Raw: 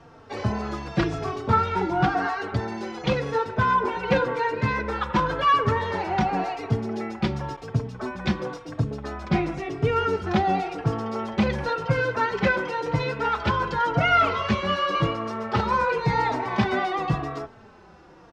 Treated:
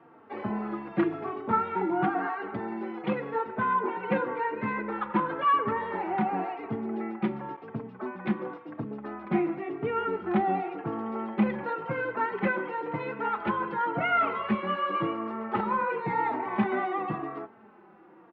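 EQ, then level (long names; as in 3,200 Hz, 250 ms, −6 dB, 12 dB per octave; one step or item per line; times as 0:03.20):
loudspeaker in its box 200–2,700 Hz, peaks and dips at 210 Hz +9 dB, 340 Hz +9 dB, 840 Hz +5 dB, 1,200 Hz +4 dB, 2,000 Hz +3 dB
−8.0 dB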